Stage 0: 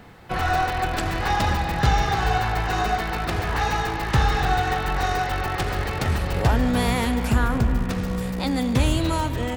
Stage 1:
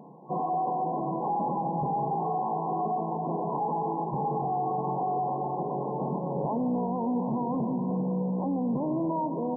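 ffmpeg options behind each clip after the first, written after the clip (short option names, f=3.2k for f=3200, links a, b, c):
-af "afftfilt=real='re*between(b*sr/4096,130,1100)':imag='im*between(b*sr/4096,130,1100)':win_size=4096:overlap=0.75,alimiter=limit=-22dB:level=0:latency=1:release=15"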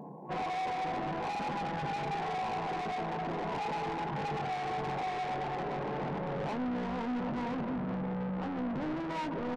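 -filter_complex "[0:a]asoftclip=type=tanh:threshold=-36.5dB,asplit=2[a][b];[b]adelay=20,volume=-12dB[c];[a][c]amix=inputs=2:normalize=0,volume=3dB"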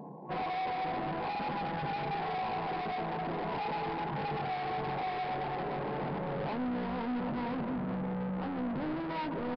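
-af "aresample=11025,aresample=44100"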